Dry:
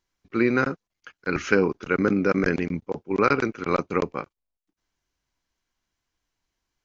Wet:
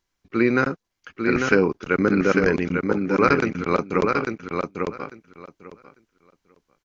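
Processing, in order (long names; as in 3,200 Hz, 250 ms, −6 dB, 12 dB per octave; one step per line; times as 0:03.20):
repeating echo 847 ms, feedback 16%, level −4.5 dB
level +2 dB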